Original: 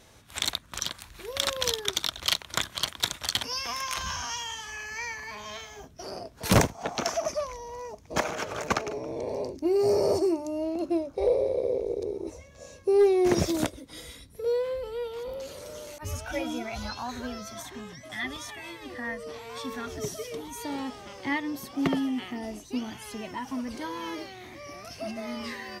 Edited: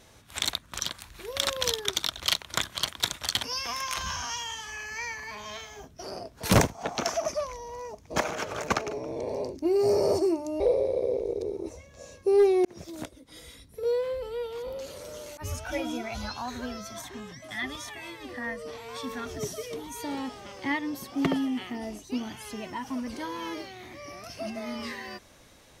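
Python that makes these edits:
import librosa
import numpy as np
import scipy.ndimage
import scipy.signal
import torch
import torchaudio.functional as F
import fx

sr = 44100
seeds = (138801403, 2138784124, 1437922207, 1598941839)

y = fx.edit(x, sr, fx.cut(start_s=10.6, length_s=0.61),
    fx.fade_in_span(start_s=13.26, length_s=1.24), tone=tone)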